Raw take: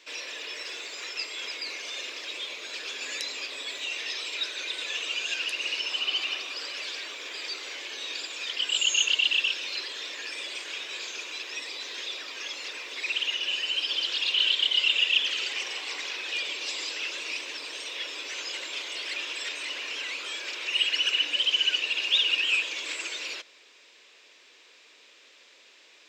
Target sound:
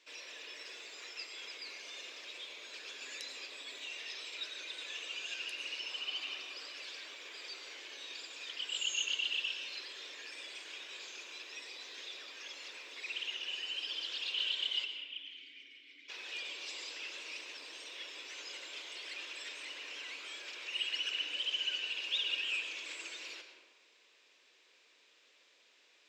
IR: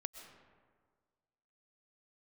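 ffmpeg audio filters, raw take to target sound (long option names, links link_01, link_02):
-filter_complex "[0:a]asplit=3[link_01][link_02][link_03];[link_01]afade=type=out:start_time=14.84:duration=0.02[link_04];[link_02]asplit=3[link_05][link_06][link_07];[link_05]bandpass=frequency=270:width_type=q:width=8,volume=0dB[link_08];[link_06]bandpass=frequency=2290:width_type=q:width=8,volume=-6dB[link_09];[link_07]bandpass=frequency=3010:width_type=q:width=8,volume=-9dB[link_10];[link_08][link_09][link_10]amix=inputs=3:normalize=0,afade=type=in:start_time=14.84:duration=0.02,afade=type=out:start_time=16.08:duration=0.02[link_11];[link_03]afade=type=in:start_time=16.08:duration=0.02[link_12];[link_04][link_11][link_12]amix=inputs=3:normalize=0[link_13];[1:a]atrim=start_sample=2205,asetrate=52920,aresample=44100[link_14];[link_13][link_14]afir=irnorm=-1:irlink=0,volume=-6.5dB"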